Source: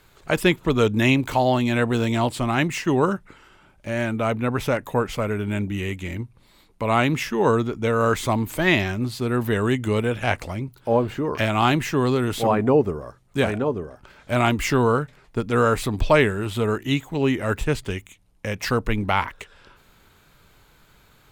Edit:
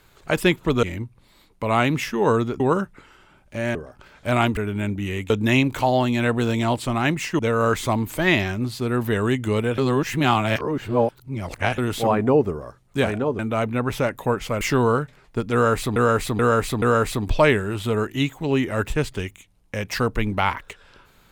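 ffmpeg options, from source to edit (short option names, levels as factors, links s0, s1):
-filter_complex "[0:a]asplit=14[s0][s1][s2][s3][s4][s5][s6][s7][s8][s9][s10][s11][s12][s13];[s0]atrim=end=0.832[s14];[s1]atrim=start=6.018:end=7.792[s15];[s2]atrim=start=2.918:end=4.072[s16];[s3]atrim=start=13.788:end=14.612[s17];[s4]atrim=start=5.288:end=6.022[s18];[s5]atrim=start=0.828:end=2.922[s19];[s6]atrim=start=7.788:end=10.182[s20];[s7]atrim=start=10.178:end=12.182,asetpts=PTS-STARTPTS,areverse[s21];[s8]atrim=start=12.178:end=13.792[s22];[s9]atrim=start=4.068:end=5.292[s23];[s10]atrim=start=14.608:end=15.962[s24];[s11]atrim=start=15.528:end=15.962[s25];[s12]atrim=start=15.528:end=15.962[s26];[s13]atrim=start=15.528[s27];[s14][s15]acrossfade=d=0.004:c1=hsin:c2=hsin[s28];[s28][s16]acrossfade=d=0.004:c1=hsin:c2=hsin[s29];[s29][s17]acrossfade=d=0.004:c1=hsin:c2=hsin[s30];[s30][s18]acrossfade=d=0.004:c1=hsin:c2=hsin[s31];[s31][s19]acrossfade=d=0.004:c1=hsin:c2=hsin[s32];[s32][s20]acrossfade=d=0.004:c1=hsin:c2=hsin[s33];[s33][s21]acrossfade=d=0.004:c1=hsin:c2=hsin[s34];[s34][s22]acrossfade=d=0.004:c1=hsin:c2=hsin[s35];[s35][s23]acrossfade=d=0.004:c1=hsin:c2=hsin[s36];[s36][s24]acrossfade=d=0.004:c1=hsin:c2=hsin[s37];[s37][s25]acrossfade=d=0.004:c1=hsin:c2=hsin[s38];[s38][s26]acrossfade=d=0.004:c1=hsin:c2=hsin[s39];[s39][s27]acrossfade=d=0.004:c1=hsin:c2=hsin"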